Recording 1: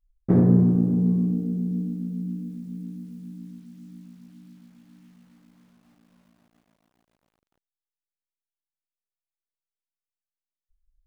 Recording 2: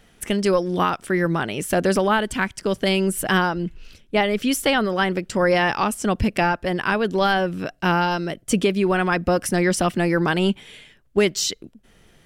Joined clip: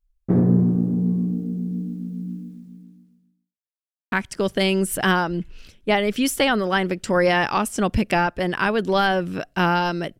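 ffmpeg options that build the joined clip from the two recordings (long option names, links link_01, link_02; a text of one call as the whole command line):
ffmpeg -i cue0.wav -i cue1.wav -filter_complex "[0:a]apad=whole_dur=10.19,atrim=end=10.19,asplit=2[link_01][link_02];[link_01]atrim=end=3.58,asetpts=PTS-STARTPTS,afade=type=out:start_time=2.33:duration=1.25:curve=qua[link_03];[link_02]atrim=start=3.58:end=4.12,asetpts=PTS-STARTPTS,volume=0[link_04];[1:a]atrim=start=2.38:end=8.45,asetpts=PTS-STARTPTS,afade=type=in:duration=0.004:curve=hsin[link_05];[link_03][link_04][link_05]concat=n=3:v=0:a=1" out.wav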